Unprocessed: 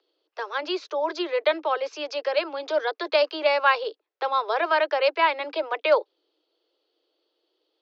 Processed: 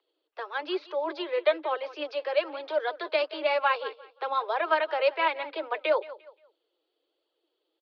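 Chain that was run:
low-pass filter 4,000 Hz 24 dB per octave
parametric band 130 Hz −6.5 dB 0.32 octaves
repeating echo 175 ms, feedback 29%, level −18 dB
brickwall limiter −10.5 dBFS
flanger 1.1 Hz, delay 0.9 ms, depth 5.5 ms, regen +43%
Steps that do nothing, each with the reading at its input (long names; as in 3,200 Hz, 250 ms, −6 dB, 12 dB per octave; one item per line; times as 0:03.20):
parametric band 130 Hz: nothing at its input below 270 Hz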